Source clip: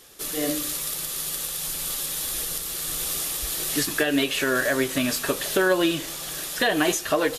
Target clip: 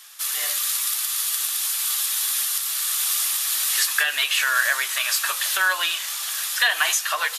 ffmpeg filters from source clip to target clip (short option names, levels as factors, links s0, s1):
-af "highpass=f=1000:w=0.5412,highpass=f=1000:w=1.3066,volume=1.88"